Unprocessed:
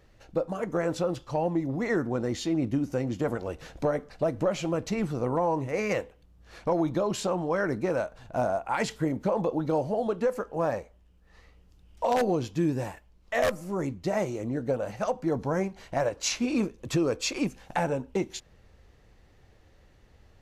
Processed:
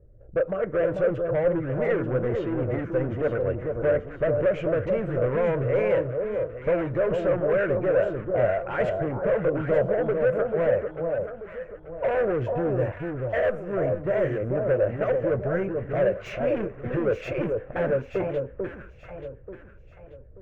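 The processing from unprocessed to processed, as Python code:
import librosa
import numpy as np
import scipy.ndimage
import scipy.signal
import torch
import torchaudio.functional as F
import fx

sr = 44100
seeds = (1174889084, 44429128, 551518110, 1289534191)

y = fx.spec_erase(x, sr, start_s=15.43, length_s=0.29, low_hz=470.0, high_hz=1300.0)
y = fx.env_lowpass(y, sr, base_hz=350.0, full_db=-24.5)
y = np.clip(y, -10.0 ** (-27.5 / 20.0), 10.0 ** (-27.5 / 20.0))
y = fx.curve_eq(y, sr, hz=(120.0, 260.0, 390.0, 580.0, 850.0, 1500.0, 2800.0, 4300.0), db=(0, -12, -1, 4, -13, 0, -10, -29))
y = fx.echo_alternate(y, sr, ms=442, hz=1100.0, feedback_pct=57, wet_db=-3.5)
y = y * 10.0 ** (7.0 / 20.0)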